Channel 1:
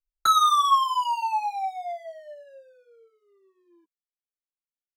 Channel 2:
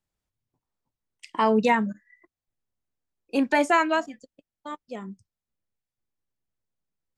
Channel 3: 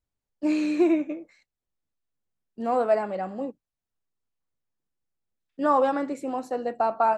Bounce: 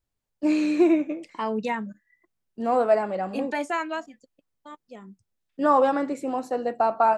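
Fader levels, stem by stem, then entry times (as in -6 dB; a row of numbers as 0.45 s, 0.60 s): mute, -7.0 dB, +2.0 dB; mute, 0.00 s, 0.00 s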